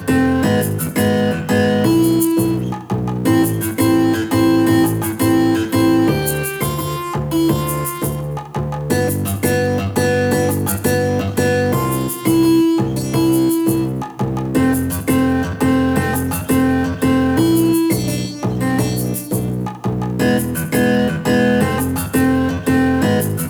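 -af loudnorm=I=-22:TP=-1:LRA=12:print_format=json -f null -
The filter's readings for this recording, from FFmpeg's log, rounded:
"input_i" : "-16.5",
"input_tp" : "-2.9",
"input_lra" : "2.9",
"input_thresh" : "-26.5",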